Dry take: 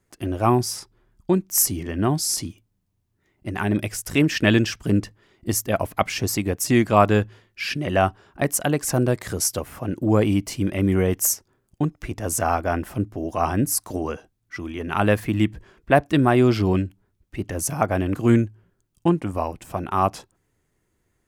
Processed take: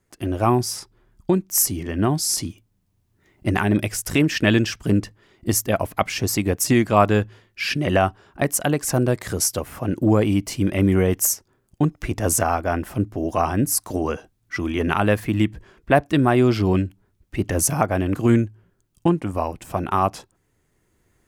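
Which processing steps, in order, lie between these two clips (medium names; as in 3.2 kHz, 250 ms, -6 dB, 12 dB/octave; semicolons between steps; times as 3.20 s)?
recorder AGC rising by 5.9 dB/s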